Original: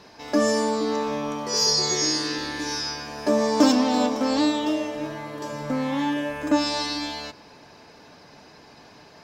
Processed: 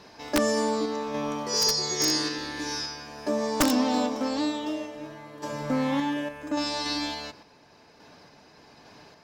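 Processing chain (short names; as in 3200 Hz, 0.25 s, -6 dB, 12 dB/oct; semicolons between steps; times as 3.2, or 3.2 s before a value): random-step tremolo, depth 65%; wrapped overs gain 13.5 dB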